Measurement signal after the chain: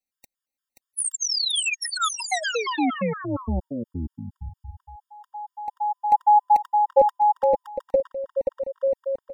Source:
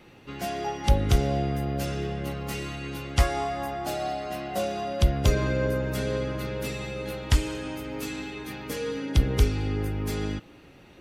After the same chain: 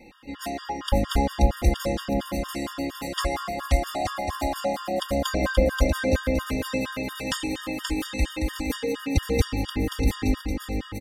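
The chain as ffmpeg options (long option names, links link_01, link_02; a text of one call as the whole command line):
ffmpeg -i in.wav -af "aecho=1:1:3.8:0.78,aecho=1:1:530|874.5|1098|1244|1339:0.631|0.398|0.251|0.158|0.1,afftfilt=real='re*gt(sin(2*PI*4.3*pts/sr)*(1-2*mod(floor(b*sr/1024/930),2)),0)':imag='im*gt(sin(2*PI*4.3*pts/sr)*(1-2*mod(floor(b*sr/1024/930),2)),0)':win_size=1024:overlap=0.75,volume=2dB" out.wav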